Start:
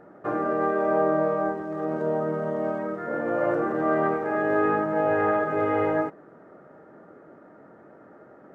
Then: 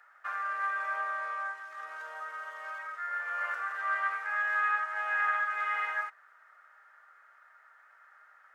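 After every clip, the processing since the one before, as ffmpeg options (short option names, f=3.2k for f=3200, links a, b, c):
-af "highpass=f=1.4k:w=0.5412,highpass=f=1.4k:w=1.3066,volume=4dB"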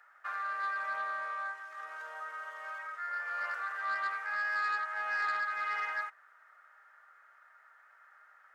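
-af "asoftclip=type=tanh:threshold=-24.5dB,volume=-1.5dB"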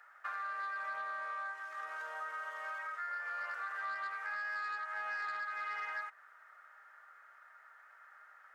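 -af "acompressor=threshold=-39dB:ratio=6,volume=1.5dB"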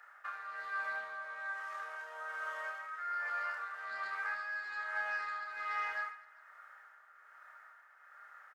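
-af "aecho=1:1:30|75|142.5|243.8|395.6:0.631|0.398|0.251|0.158|0.1,tremolo=f=1.2:d=0.51,volume=1dB"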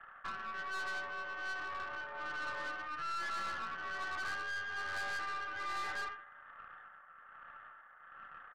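-af "highpass=f=450:t=q:w=0.5412,highpass=f=450:t=q:w=1.307,lowpass=f=2.1k:t=q:w=0.5176,lowpass=f=2.1k:t=q:w=0.7071,lowpass=f=2.1k:t=q:w=1.932,afreqshift=-51,aeval=exprs='(tanh(126*val(0)+0.5)-tanh(0.5))/126':c=same,volume=5.5dB"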